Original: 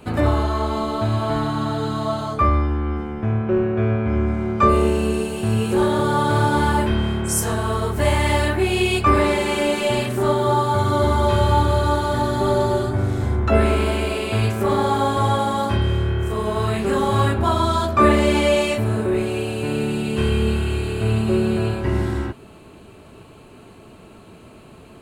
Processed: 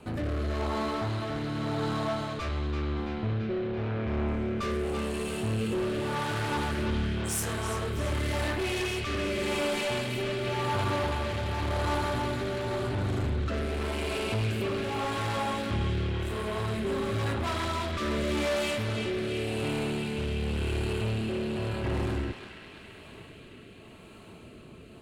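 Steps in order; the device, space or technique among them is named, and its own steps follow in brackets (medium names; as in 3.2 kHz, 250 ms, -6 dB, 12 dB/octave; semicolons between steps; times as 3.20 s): overdriven rotary cabinet (valve stage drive 24 dB, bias 0.45; rotary cabinet horn 0.9 Hz); band-passed feedback delay 335 ms, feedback 77%, band-pass 2.8 kHz, level -4.5 dB; trim -1.5 dB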